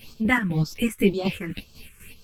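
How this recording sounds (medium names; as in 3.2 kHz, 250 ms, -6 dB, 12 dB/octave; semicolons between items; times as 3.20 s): phasing stages 4, 1.9 Hz, lowest notch 680–2000 Hz; chopped level 4 Hz, depth 60%, duty 50%; a shimmering, thickened sound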